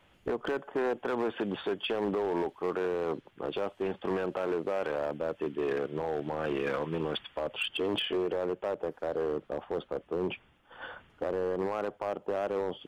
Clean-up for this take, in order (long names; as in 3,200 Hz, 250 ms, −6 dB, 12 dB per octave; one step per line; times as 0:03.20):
clipped peaks rebuilt −25 dBFS